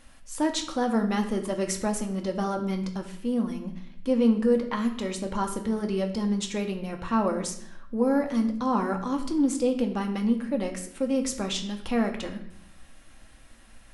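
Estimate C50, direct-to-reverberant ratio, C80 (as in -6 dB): 9.5 dB, 3.5 dB, 12.0 dB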